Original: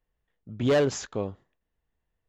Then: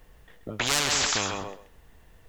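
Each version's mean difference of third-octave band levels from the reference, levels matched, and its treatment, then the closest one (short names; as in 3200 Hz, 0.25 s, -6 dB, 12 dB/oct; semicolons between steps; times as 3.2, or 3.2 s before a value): 14.5 dB: on a send: thinning echo 0.131 s, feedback 21%, high-pass 580 Hz, level -10 dB; on the sum: spectral compressor 10:1; gain +8.5 dB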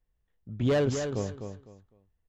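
5.0 dB: low shelf 160 Hz +9.5 dB; feedback echo 0.253 s, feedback 24%, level -7.5 dB; gain -4.5 dB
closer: second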